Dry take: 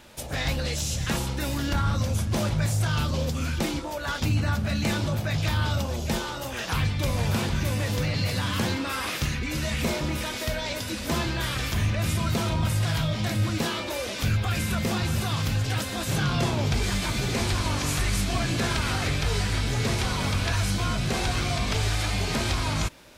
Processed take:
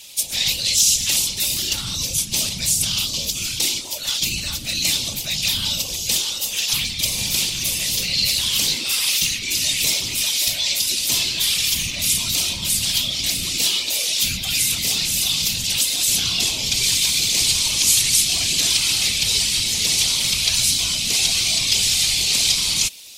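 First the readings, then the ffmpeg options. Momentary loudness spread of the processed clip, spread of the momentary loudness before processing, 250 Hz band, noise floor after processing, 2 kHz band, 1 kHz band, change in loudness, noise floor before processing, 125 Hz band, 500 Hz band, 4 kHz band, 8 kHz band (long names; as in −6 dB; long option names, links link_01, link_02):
5 LU, 3 LU, −7.5 dB, −29 dBFS, +4.0 dB, −9.5 dB, +9.0 dB, −33 dBFS, −10.5 dB, −9.0 dB, +14.5 dB, +17.5 dB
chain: -af "afftfilt=real='hypot(re,im)*cos(2*PI*random(0))':imag='hypot(re,im)*sin(2*PI*random(1))':win_size=512:overlap=0.75,aexciter=amount=15.6:drive=4.4:freq=2400,volume=-3dB"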